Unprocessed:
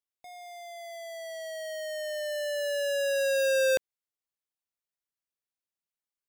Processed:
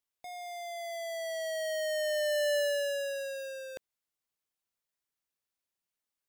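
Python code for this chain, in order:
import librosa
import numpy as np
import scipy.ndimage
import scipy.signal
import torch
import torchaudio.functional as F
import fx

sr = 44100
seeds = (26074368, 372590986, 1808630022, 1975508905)

y = fx.over_compress(x, sr, threshold_db=-31.0, ratio=-0.5)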